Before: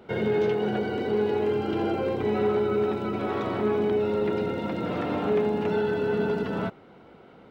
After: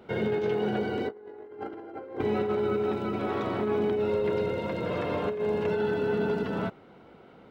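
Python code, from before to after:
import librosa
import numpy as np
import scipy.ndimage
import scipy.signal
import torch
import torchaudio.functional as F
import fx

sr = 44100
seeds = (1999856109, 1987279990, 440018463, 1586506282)

y = fx.spec_box(x, sr, start_s=1.08, length_s=1.12, low_hz=250.0, high_hz=2200.0, gain_db=11)
y = fx.comb(y, sr, ms=1.9, depth=0.5, at=(4.08, 5.79))
y = fx.over_compress(y, sr, threshold_db=-24.0, ratio=-0.5)
y = F.gain(torch.from_numpy(y), -4.5).numpy()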